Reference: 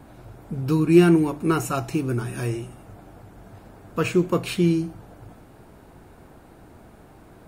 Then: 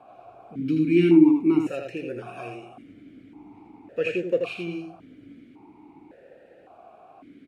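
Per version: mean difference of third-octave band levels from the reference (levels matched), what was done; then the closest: 7.5 dB: dynamic bell 810 Hz, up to -6 dB, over -36 dBFS, Q 0.94; delay 82 ms -5 dB; stepped vowel filter 1.8 Hz; trim +9 dB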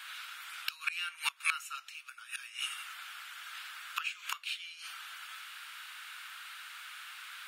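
22.0 dB: elliptic high-pass 1.3 kHz, stop band 80 dB; inverted gate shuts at -32 dBFS, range -24 dB; peaking EQ 3.1 kHz +11 dB 1.1 oct; trim +10 dB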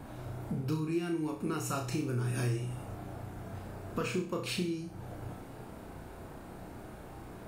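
10.0 dB: dynamic bell 5.2 kHz, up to +5 dB, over -48 dBFS, Q 1.2; compression 6:1, threshold -33 dBFS, peak gain reduction 22 dB; flutter echo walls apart 5.6 m, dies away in 0.4 s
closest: first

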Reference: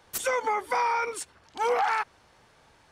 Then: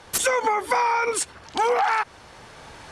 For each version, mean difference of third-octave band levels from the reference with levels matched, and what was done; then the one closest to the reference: 5.0 dB: recorder AGC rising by 6.4 dB/s; low-pass 12 kHz 24 dB/octave; in parallel at -2 dB: peak limiter -25 dBFS, peak gain reduction 8 dB; on the sum: compression 4:1, threshold -25 dBFS, peak gain reduction 6 dB; trim +6.5 dB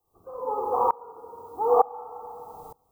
13.0 dB: steep low-pass 1.2 kHz 96 dB/octave; added noise violet -62 dBFS; simulated room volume 3000 m³, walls mixed, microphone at 3.7 m; sawtooth tremolo in dB swelling 1.1 Hz, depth 25 dB; trim +3.5 dB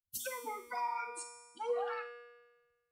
8.5 dB: expander on every frequency bin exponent 3; compression, threshold -34 dBFS, peak gain reduction 9.5 dB; feedback comb 240 Hz, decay 1.3 s, mix 90%; on a send: flutter echo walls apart 8.3 m, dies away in 0.24 s; on the sum: trim +14.5 dB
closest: first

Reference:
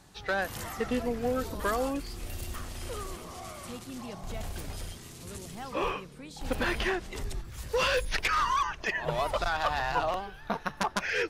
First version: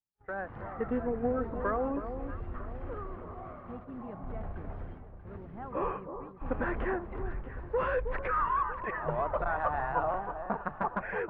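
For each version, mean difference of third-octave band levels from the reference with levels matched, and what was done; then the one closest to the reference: 12.0 dB: low-pass 1.6 kHz 24 dB/octave; gate -44 dBFS, range -39 dB; level rider gain up to 7 dB; on a send: echo whose repeats swap between lows and highs 318 ms, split 1.1 kHz, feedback 61%, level -8.5 dB; on the sum: trim -8.5 dB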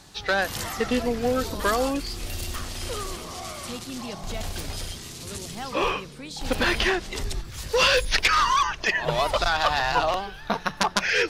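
1.5 dB: peaking EQ 4.5 kHz +6.5 dB 1.5 oct; hum notches 60/120/180 Hz; reverse; upward compressor, threshold -43 dBFS; reverse; crackle 88 per s -59 dBFS; trim +5.5 dB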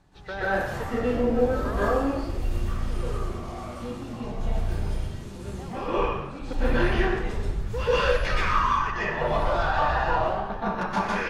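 8.0 dB: low-pass 2 kHz 6 dB/octave; bass shelf 67 Hz +7.5 dB; on a send: frequency-shifting echo 95 ms, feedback 55%, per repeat +56 Hz, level -14.5 dB; on the sum: plate-style reverb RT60 0.86 s, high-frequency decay 0.75×, pre-delay 110 ms, DRR -10 dB; trim -5 dB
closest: second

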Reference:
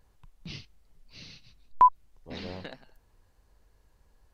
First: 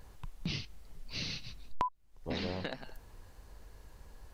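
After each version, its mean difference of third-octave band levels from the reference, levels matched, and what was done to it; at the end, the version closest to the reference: 12.0 dB: compression 10:1, threshold -43 dBFS, peak gain reduction 27.5 dB; trim +10.5 dB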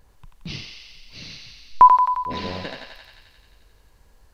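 2.0 dB: thinning echo 88 ms, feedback 76%, high-pass 650 Hz, level -4 dB; trim +8 dB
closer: second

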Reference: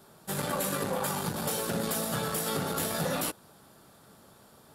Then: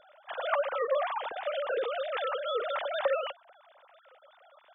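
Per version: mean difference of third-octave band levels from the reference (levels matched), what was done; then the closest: 21.5 dB: formants replaced by sine waves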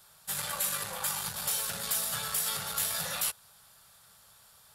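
7.5 dB: amplifier tone stack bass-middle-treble 10-0-10; trim +4 dB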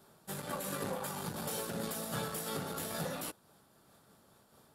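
1.0 dB: random flutter of the level, depth 60%; trim -4.5 dB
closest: third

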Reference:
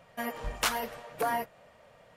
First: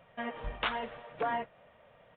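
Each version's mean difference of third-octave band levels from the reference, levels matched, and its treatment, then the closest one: 5.5 dB: resampled via 8 kHz; trim -2.5 dB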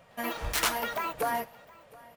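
4.0 dB: ever faster or slower copies 110 ms, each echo +6 st, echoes 2; treble shelf 11 kHz +4.5 dB; delay 715 ms -23 dB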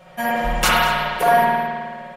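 7.0 dB: comb 5.5 ms, depth 93%; on a send: multi-tap echo 96/195/227 ms -18.5/-18.5/-17 dB; on the sum: spring tank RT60 1.8 s, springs 52 ms, chirp 35 ms, DRR -5 dB; trim +6.5 dB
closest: second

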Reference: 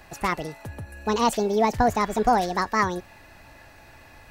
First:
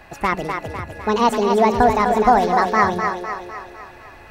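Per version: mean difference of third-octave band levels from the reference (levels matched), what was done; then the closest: 5.5 dB: tone controls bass -3 dB, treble -9 dB; on a send: two-band feedback delay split 310 Hz, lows 94 ms, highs 252 ms, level -5.5 dB; on the sum: trim +5.5 dB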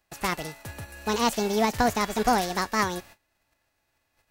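7.5 dB: formants flattened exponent 0.6; gate -44 dBFS, range -23 dB; trim -2.5 dB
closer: first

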